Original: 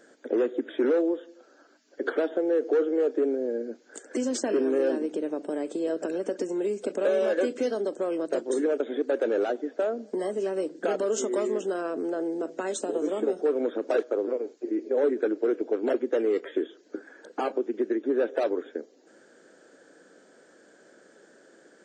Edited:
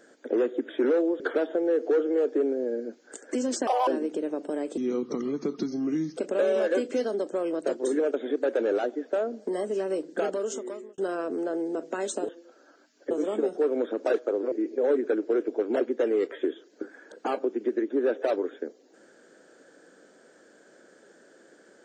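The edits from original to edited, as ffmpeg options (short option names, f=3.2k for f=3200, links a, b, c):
-filter_complex "[0:a]asplit=10[a][b][c][d][e][f][g][h][i][j];[a]atrim=end=1.202[k];[b]atrim=start=2.018:end=4.494[l];[c]atrim=start=4.49:end=4.87,asetpts=PTS-STARTPTS,asetrate=82467,aresample=44100,atrim=end_sample=8961,asetpts=PTS-STARTPTS[m];[d]atrim=start=4.866:end=5.774[n];[e]atrim=start=5.77:end=6.83,asetpts=PTS-STARTPTS,asetrate=33516,aresample=44100[o];[f]atrim=start=6.826:end=11.64,asetpts=PTS-STARTPTS,afade=t=out:st=3.994:d=0.82[p];[g]atrim=start=11.64:end=12.952,asetpts=PTS-STARTPTS,afade=t=in:d=0.004:c=hsin[q];[h]atrim=start=1.198:end=2.022[r];[i]atrim=start=12.948:end=14.362[s];[j]atrim=start=14.648[t];[k][l]acrossfade=d=0.004:c1=hsin:c2=hsin[u];[u][m]acrossfade=d=0.004:c1=hsin:c2=hsin[v];[v][n]acrossfade=d=0.004:c1=hsin:c2=hsin[w];[w][o]acrossfade=d=0.004:c1=hsin:c2=hsin[x];[p][q]concat=n=2:v=0:a=1[y];[x][y]acrossfade=d=0.004:c1=hsin:c2=hsin[z];[z][r]acrossfade=d=0.004:c1=hsin:c2=hsin[aa];[aa][s]acrossfade=d=0.004:c1=hsin:c2=hsin[ab];[ab][t]acrossfade=d=0.004:c1=hsin:c2=hsin"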